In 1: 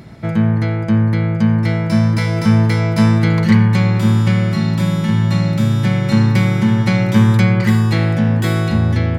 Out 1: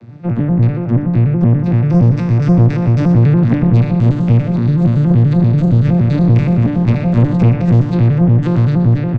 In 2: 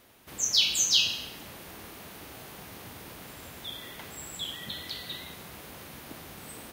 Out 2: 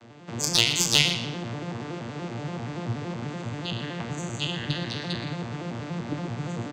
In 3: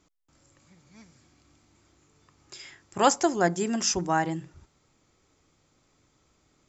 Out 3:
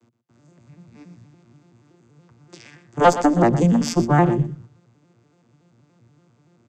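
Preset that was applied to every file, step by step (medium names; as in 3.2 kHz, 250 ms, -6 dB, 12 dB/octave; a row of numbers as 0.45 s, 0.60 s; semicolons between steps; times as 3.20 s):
vocoder on a broken chord major triad, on A#2, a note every 95 ms; valve stage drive 13 dB, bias 0.6; delay 120 ms -13 dB; peak normalisation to -2 dBFS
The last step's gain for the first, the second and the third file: +7.5 dB, +8.5 dB, +12.0 dB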